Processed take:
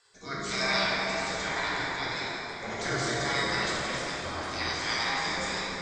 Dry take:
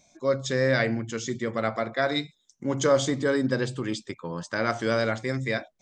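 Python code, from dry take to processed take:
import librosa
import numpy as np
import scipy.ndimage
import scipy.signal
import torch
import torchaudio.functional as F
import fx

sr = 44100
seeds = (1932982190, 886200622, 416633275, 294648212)

p1 = fx.spec_gate(x, sr, threshold_db=-20, keep='weak')
p2 = scipy.signal.sosfilt(scipy.signal.butter(4, 7400.0, 'lowpass', fs=sr, output='sos'), p1)
p3 = fx.peak_eq(p2, sr, hz=2900.0, db=-6.5, octaves=0.36)
p4 = fx.notch(p3, sr, hz=1300.0, q=28.0)
p5 = fx.over_compress(p4, sr, threshold_db=-53.0, ratio=-1.0)
p6 = p4 + (p5 * librosa.db_to_amplitude(-2.0))
p7 = fx.rotary_switch(p6, sr, hz=1.1, then_hz=5.5, switch_at_s=4.08)
p8 = p7 + fx.echo_split(p7, sr, split_hz=450.0, low_ms=304, high_ms=545, feedback_pct=52, wet_db=-14.0, dry=0)
p9 = fx.rev_plate(p8, sr, seeds[0], rt60_s=3.8, hf_ratio=0.5, predelay_ms=0, drr_db=-6.5)
y = p9 * librosa.db_to_amplitude(6.0)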